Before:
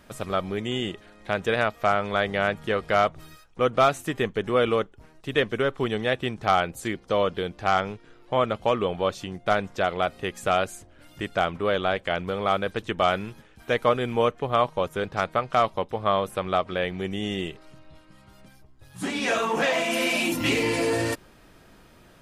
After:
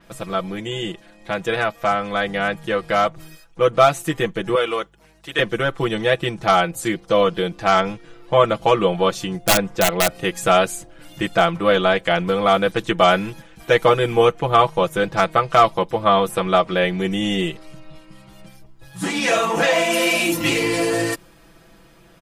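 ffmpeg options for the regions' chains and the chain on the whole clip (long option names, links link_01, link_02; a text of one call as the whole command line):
ffmpeg -i in.wav -filter_complex "[0:a]asettb=1/sr,asplit=3[link_01][link_02][link_03];[link_01]atrim=end=4.554[link_04];[link_02]atrim=start=4.55:end=5.39,asetpts=PTS-STARTPTS,afade=type=in:duration=0.004:curve=qsin,afade=type=out:start_time=0.836:duration=0.004:curve=qsin,highpass=frequency=780:poles=1,aeval=exprs='val(0)+0.001*(sin(2*PI*50*n/s)+sin(2*PI*2*50*n/s)/2+sin(2*PI*3*50*n/s)/3+sin(2*PI*4*50*n/s)/4+sin(2*PI*5*50*n/s)/5)':channel_layout=same[link_05];[link_03]atrim=start=5.386[link_06];[link_04][link_05]acrossfade=duration=0.004:curve1=hsin:curve2=qsin[link_07];[link_07][link_06]acrossfade=duration=0.004:curve1=qsin:curve2=hsin,asettb=1/sr,asplit=3[link_08][link_09][link_10];[link_08]atrim=end=9.464[link_11];[link_09]atrim=start=9.46:end=10.15,asetpts=PTS-STARTPTS,afade=type=in:duration=0.004:curve=qsin,afade=type=out:start_time=0.686:duration=0.004:curve=qsin,highshelf=frequency=2900:gain=-8,aeval=exprs='(mod(5.62*val(0)+1,2)-1)/5.62':channel_layout=same[link_12];[link_10]atrim=start=10.146[link_13];[link_11][link_12]acrossfade=duration=0.004:curve1=hsin:curve2=qsin[link_14];[link_14][link_13]acrossfade=duration=0.004:curve1=qsin:curve2=hsin,aecho=1:1:6:0.92,dynaudnorm=framelen=580:gausssize=13:maxgain=11.5dB,adynamicequalizer=threshold=0.0126:dfrequency=5600:dqfactor=0.7:tfrequency=5600:tqfactor=0.7:attack=5:release=100:ratio=0.375:range=2:mode=boostabove:tftype=highshelf" out.wav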